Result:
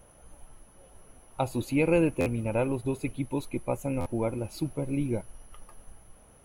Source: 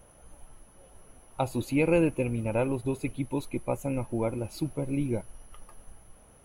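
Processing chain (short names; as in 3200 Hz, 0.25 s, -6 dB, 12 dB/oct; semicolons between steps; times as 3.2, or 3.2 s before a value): stuck buffer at 2.2/4, samples 512, times 4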